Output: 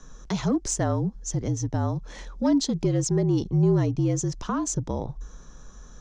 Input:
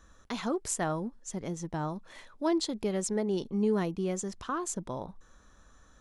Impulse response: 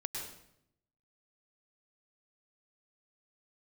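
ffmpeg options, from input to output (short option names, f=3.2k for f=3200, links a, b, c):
-filter_complex "[0:a]lowpass=f=6.2k:t=q:w=3.6,tiltshelf=f=670:g=6,asplit=2[a][b];[b]acompressor=threshold=-39dB:ratio=6,volume=-1.5dB[c];[a][c]amix=inputs=2:normalize=0,asoftclip=type=tanh:threshold=-15.5dB,afreqshift=-49,volume=3.5dB"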